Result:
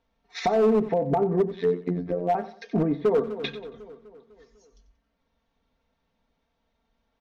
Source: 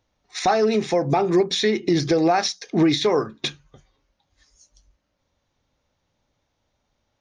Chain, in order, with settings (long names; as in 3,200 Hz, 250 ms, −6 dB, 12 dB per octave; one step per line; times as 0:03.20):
Gaussian smoothing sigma 1.8 samples
treble cut that deepens with the level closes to 680 Hz, closed at −18.5 dBFS
comb filter 4.4 ms, depth 80%
0:01.56–0:02.35: phases set to zero 88.2 Hz
hard clipping −13 dBFS, distortion −16 dB
repeating echo 92 ms, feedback 32%, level −14.5 dB
0:02.89–0:03.37: delay throw 250 ms, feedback 55%, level −12.5 dB
level −3 dB